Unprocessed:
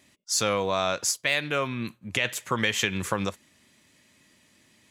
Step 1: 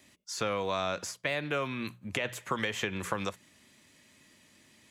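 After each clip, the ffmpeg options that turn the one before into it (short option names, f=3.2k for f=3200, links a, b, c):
-filter_complex "[0:a]bandreject=f=60:t=h:w=6,bandreject=f=120:t=h:w=6,bandreject=f=180:t=h:w=6,acrossover=split=380|1300|2800[a][b][c][d];[a]acompressor=threshold=-37dB:ratio=4[e];[b]acompressor=threshold=-33dB:ratio=4[f];[c]acompressor=threshold=-37dB:ratio=4[g];[d]acompressor=threshold=-43dB:ratio=4[h];[e][f][g][h]amix=inputs=4:normalize=0"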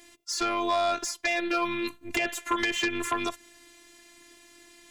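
-af "afftfilt=real='hypot(re,im)*cos(PI*b)':imag='0':win_size=512:overlap=0.75,aeval=exprs='0.141*sin(PI/2*2.24*val(0)/0.141)':c=same"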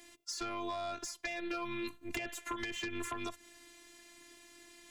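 -filter_complex "[0:a]acrossover=split=200[a][b];[b]acompressor=threshold=-34dB:ratio=5[c];[a][c]amix=inputs=2:normalize=0,volume=-3.5dB"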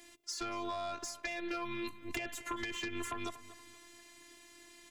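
-filter_complex "[0:a]asplit=2[a][b];[b]adelay=237,lowpass=f=3.5k:p=1,volume=-14.5dB,asplit=2[c][d];[d]adelay=237,lowpass=f=3.5k:p=1,volume=0.39,asplit=2[e][f];[f]adelay=237,lowpass=f=3.5k:p=1,volume=0.39,asplit=2[g][h];[h]adelay=237,lowpass=f=3.5k:p=1,volume=0.39[i];[a][c][e][g][i]amix=inputs=5:normalize=0"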